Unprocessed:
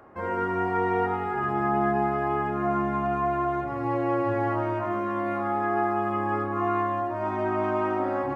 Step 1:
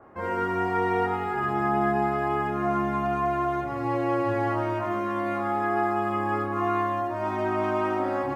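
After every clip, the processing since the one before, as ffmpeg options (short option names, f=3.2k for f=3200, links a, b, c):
-af "adynamicequalizer=threshold=0.00562:dfrequency=2600:dqfactor=0.7:tfrequency=2600:tqfactor=0.7:attack=5:release=100:ratio=0.375:range=4:mode=boostabove:tftype=highshelf"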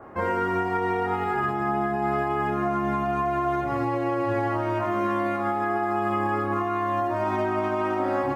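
-af "alimiter=limit=-24dB:level=0:latency=1:release=262,volume=7dB"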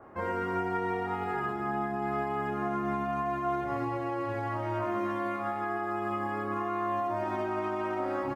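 -af "aecho=1:1:119.5|253.6:0.282|0.282,volume=-7dB"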